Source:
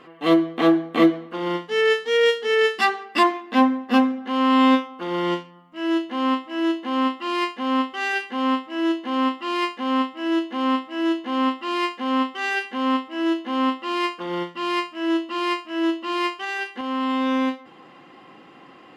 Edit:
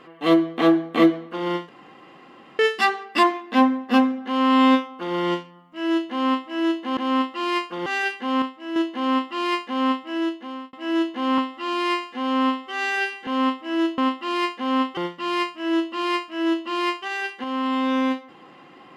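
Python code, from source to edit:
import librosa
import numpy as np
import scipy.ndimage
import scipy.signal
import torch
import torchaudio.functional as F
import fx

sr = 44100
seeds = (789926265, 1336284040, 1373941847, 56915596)

y = fx.edit(x, sr, fx.room_tone_fill(start_s=1.69, length_s=0.9),
    fx.swap(start_s=6.97, length_s=0.99, other_s=13.45, other_length_s=0.89),
    fx.clip_gain(start_s=8.52, length_s=0.34, db=-6.0),
    fx.fade_out_span(start_s=10.17, length_s=0.66),
    fx.stretch_span(start_s=11.48, length_s=1.26, factor=1.5), tone=tone)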